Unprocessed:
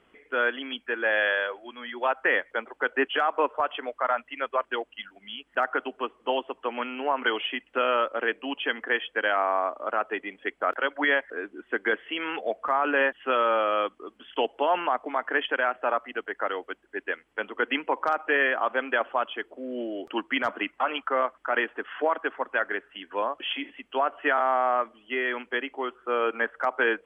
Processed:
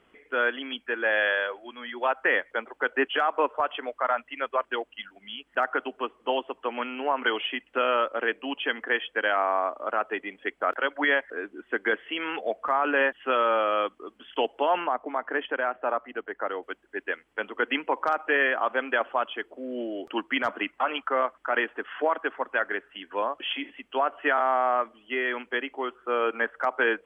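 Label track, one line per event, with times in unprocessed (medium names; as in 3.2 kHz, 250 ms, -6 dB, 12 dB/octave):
14.840000	16.630000	treble shelf 2.4 kHz -11.5 dB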